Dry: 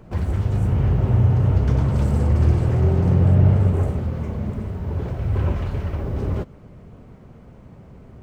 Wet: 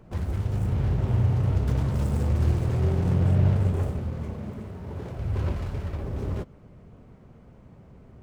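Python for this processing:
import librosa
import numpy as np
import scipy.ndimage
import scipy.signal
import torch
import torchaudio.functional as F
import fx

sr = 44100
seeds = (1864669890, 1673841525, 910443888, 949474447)

y = fx.tracing_dist(x, sr, depth_ms=0.3)
y = fx.highpass(y, sr, hz=130.0, slope=6, at=(4.34, 5.16))
y = F.gain(torch.from_numpy(y), -6.0).numpy()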